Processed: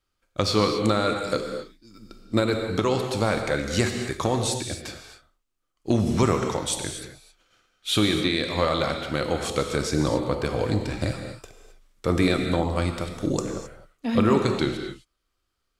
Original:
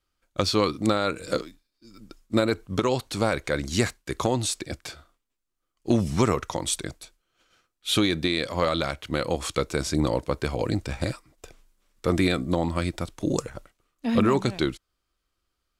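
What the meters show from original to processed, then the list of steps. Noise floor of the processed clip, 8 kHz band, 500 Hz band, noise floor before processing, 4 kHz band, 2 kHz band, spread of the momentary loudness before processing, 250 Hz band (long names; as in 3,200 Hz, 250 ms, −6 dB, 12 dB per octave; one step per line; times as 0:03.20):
−77 dBFS, +0.5 dB, +1.5 dB, −80 dBFS, +1.5 dB, +1.5 dB, 9 LU, +1.0 dB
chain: high-shelf EQ 12,000 Hz −4 dB
reverb whose tail is shaped and stops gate 290 ms flat, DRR 4 dB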